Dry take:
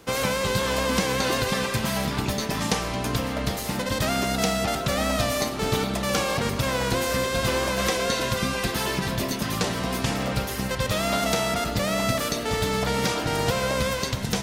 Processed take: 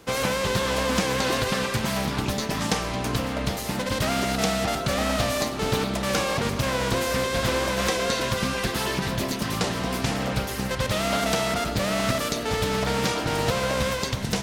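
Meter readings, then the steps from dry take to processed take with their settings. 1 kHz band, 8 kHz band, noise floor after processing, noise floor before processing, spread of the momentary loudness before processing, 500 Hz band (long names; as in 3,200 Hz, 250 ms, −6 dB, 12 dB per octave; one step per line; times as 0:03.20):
0.0 dB, −1.0 dB, −30 dBFS, −30 dBFS, 3 LU, 0.0 dB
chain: highs frequency-modulated by the lows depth 0.3 ms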